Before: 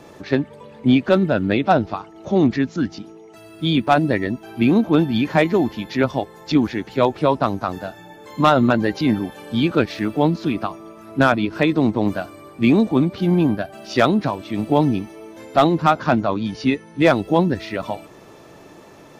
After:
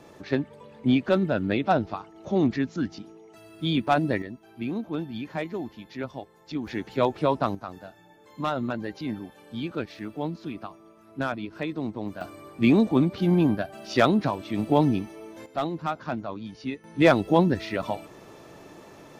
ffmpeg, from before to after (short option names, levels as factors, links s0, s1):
-af "asetnsamples=n=441:p=0,asendcmd='4.22 volume volume -15dB;6.67 volume volume -6dB;7.55 volume volume -13.5dB;12.21 volume volume -4dB;15.46 volume volume -13.5dB;16.84 volume volume -3dB',volume=0.473"